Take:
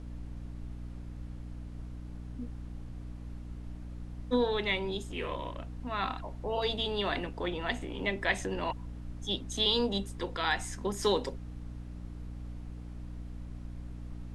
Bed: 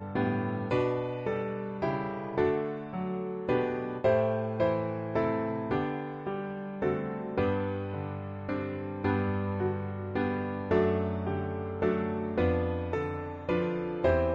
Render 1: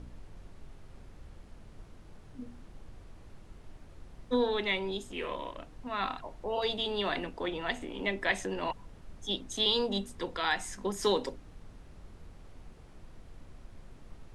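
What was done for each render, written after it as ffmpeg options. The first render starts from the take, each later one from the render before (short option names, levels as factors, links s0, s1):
-af "bandreject=f=60:t=h:w=4,bandreject=f=120:t=h:w=4,bandreject=f=180:t=h:w=4,bandreject=f=240:t=h:w=4,bandreject=f=300:t=h:w=4"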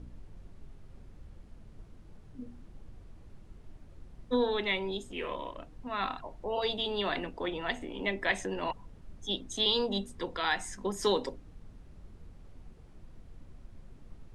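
-af "afftdn=nr=6:nf=-52"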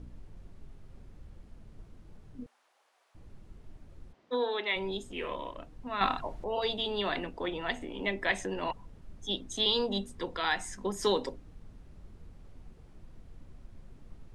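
-filter_complex "[0:a]asettb=1/sr,asplit=3[s0][s1][s2];[s0]atrim=end=2.464[s3];[s1]atrim=start=2.46:end=3.15,asetpts=PTS-STARTPTS,afade=t=in:d=0.004:c=qsin,afade=t=out:st=0.686:d=0.004:c=qsin,highpass=f=690:w=0.5412,highpass=f=690:w=1.3066[s4];[s2]atrim=start=3.146[s5];[s3][s4]acrossfade=d=0.004:c1=hsin:c2=qsin[s6];[s6][s5]acrossfade=d=0.004:c1=qsin:c2=hsin,asplit=3[s7][s8][s9];[s7]afade=t=out:st=4.12:d=0.02[s10];[s8]highpass=400,lowpass=5000,afade=t=in:st=4.12:d=0.02,afade=t=out:st=4.75:d=0.02[s11];[s9]afade=t=in:st=4.75:d=0.02[s12];[s10][s11][s12]amix=inputs=3:normalize=0,asplit=3[s13][s14][s15];[s13]atrim=end=6.012[s16];[s14]atrim=start=6.008:end=6.442,asetpts=PTS-STARTPTS,volume=2[s17];[s15]atrim=start=6.438[s18];[s16][s17]acrossfade=d=0.004:c1=hsin:c2=hsin[s19];[s19][s18]acrossfade=d=0.004:c1=hsin:c2=hsin"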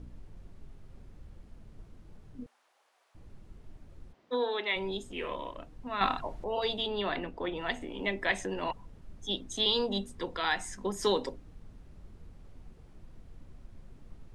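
-filter_complex "[0:a]asettb=1/sr,asplit=3[s0][s1][s2];[s0]atrim=end=6.864[s3];[s1]atrim=start=6.86:end=7.57,asetpts=PTS-STARTPTS,afade=t=in:d=0.004:c=qsin,afade=t=out:st=0.706:d=0.004:c=qsin,highshelf=f=4500:g=-8[s4];[s2]atrim=start=7.566[s5];[s3][s4]acrossfade=d=0.004:c1=hsin:c2=qsin[s6];[s6][s5]acrossfade=d=0.004:c1=qsin:c2=hsin"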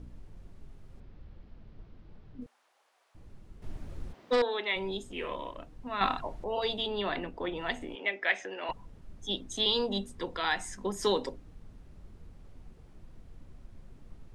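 -filter_complex "[0:a]asettb=1/sr,asplit=3[s0][s1][s2];[s0]atrim=end=1.004[s3];[s1]atrim=start=1:end=2.42,asetpts=PTS-STARTPTS,afade=t=in:d=0.004:c=qsin,afade=t=out:st=1.416:d=0.004:c=qsin,lowpass=f=4800:w=0.5412,lowpass=f=4800:w=1.3066[s4];[s2]atrim=start=2.416[s5];[s3][s4]acrossfade=d=0.004:c1=hsin:c2=qsin[s6];[s6][s5]acrossfade=d=0.004:c1=qsin:c2=hsin,asettb=1/sr,asplit=3[s7][s8][s9];[s7]atrim=end=3.624[s10];[s8]atrim=start=3.62:end=4.42,asetpts=PTS-STARTPTS,afade=t=in:d=0.004:c=qsin,afade=t=out:st=0.796:d=0.004:c=qsin,aeval=exprs='0.0891*sin(PI/2*2*val(0)/0.0891)':c=same[s11];[s9]atrim=start=4.416[s12];[s10][s11]acrossfade=d=0.004:c1=hsin:c2=qsin[s13];[s13][s12]acrossfade=d=0.004:c1=qsin:c2=hsin,asettb=1/sr,asplit=3[s14][s15][s16];[s14]atrim=end=7.954[s17];[s15]atrim=start=7.95:end=8.69,asetpts=PTS-STARTPTS,afade=t=in:d=0.004:c=qsin,afade=t=out:st=0.736:d=0.004:c=qsin,highpass=490,equalizer=f=1000:t=q:w=4:g=-7,equalizer=f=1500:t=q:w=4:g=3,equalizer=f=2300:t=q:w=4:g=5,equalizer=f=4300:t=q:w=4:g=-7,lowpass=f=5700:w=0.5412,lowpass=f=5700:w=1.3066[s18];[s16]atrim=start=8.686[s19];[s17][s18]acrossfade=d=0.004:c1=hsin:c2=qsin[s20];[s20][s19]acrossfade=d=0.004:c1=qsin:c2=hsin"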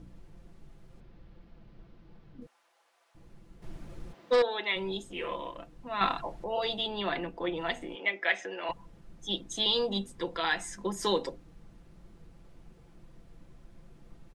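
-af "lowshelf=f=71:g=-7,aecho=1:1:5.9:0.49"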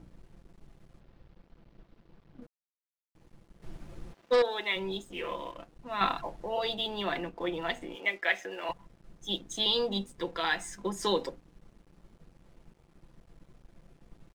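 -af "aeval=exprs='sgn(val(0))*max(abs(val(0))-0.00141,0)':c=same"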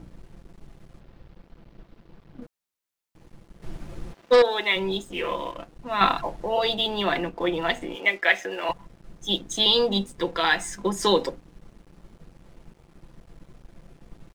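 -af "volume=2.51"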